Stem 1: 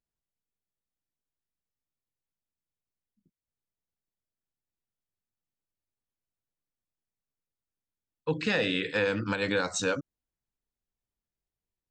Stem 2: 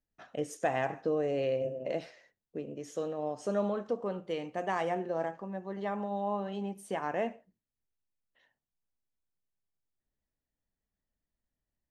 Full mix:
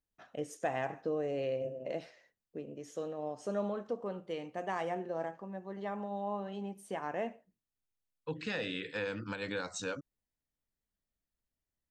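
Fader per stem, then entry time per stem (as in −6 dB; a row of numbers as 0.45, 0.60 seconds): −9.5, −4.0 decibels; 0.00, 0.00 seconds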